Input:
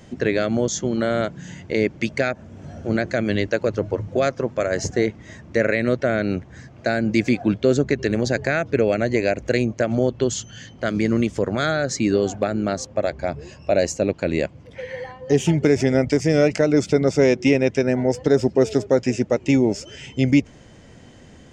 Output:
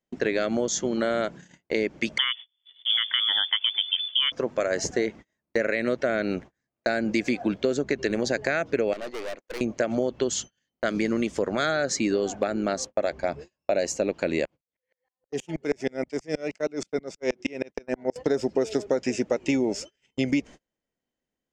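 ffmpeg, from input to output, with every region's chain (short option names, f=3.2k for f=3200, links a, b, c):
-filter_complex "[0:a]asettb=1/sr,asplit=3[a][b][c];[a]atrim=end=2.184[d];[b]atrim=start=2.18:end=4.32,asetpts=PTS-STARTPTS,afade=t=in:d=0.004:c=qsin,afade=t=out:st=2.136:d=0.004:c=qsin,highpass=f=99:p=1,lowshelf=f=160:g=3,lowpass=f=3.1k:t=q:w=0.5098,lowpass=f=3.1k:t=q:w=0.6013,lowpass=f=3.1k:t=q:w=0.9,lowpass=f=3.1k:t=q:w=2.563,afreqshift=-3600[e];[c]atrim=start=4.316[f];[d][e]acrossfade=d=0.004:c1=hsin:c2=qsin[g];[g][f]acrossfade=d=0.004:c1=qsin:c2=hsin,asettb=1/sr,asplit=3[h][i][j];[h]atrim=end=8.934[k];[i]atrim=start=8.93:end=9.61,asetpts=PTS-STARTPTS,afade=t=in:d=0.004:c=qsin,afade=t=out:st=0.676:d=0.004:c=qsin,highpass=340,lowpass=5.1k,aeval=exprs='(tanh(31.6*val(0)+0.5)-tanh(0.5))/31.6':c=same[l];[j]atrim=start=9.606[m];[k][l]acrossfade=d=0.004:c1=hsin:c2=qsin[n];[n][m]acrossfade=d=0.004:c1=qsin:c2=hsin,asettb=1/sr,asplit=3[o][p][q];[o]atrim=end=14.454[r];[p]atrim=start=14.45:end=18.16,asetpts=PTS-STARTPTS,afade=t=in:d=0.004:c=qsin,afade=t=out:st=3.706:d=0.004:c=qsin,lowshelf=f=180:g=-3.5,aeval=exprs='val(0)*pow(10,-34*if(lt(mod(-6.3*n/s,1),2*abs(-6.3)/1000),1-mod(-6.3*n/s,1)/(2*abs(-6.3)/1000),(mod(-6.3*n/s,1)-2*abs(-6.3)/1000)/(1-2*abs(-6.3)/1000))/20)':c=same[s];[q]atrim=start=18.156[t];[r][s]acrossfade=d=0.004:c1=hsin:c2=qsin[u];[u][t]acrossfade=d=0.004:c1=qsin:c2=hsin,agate=range=-38dB:threshold=-33dB:ratio=16:detection=peak,equalizer=f=100:t=o:w=1.4:g=-14.5,acompressor=threshold=-20dB:ratio=6"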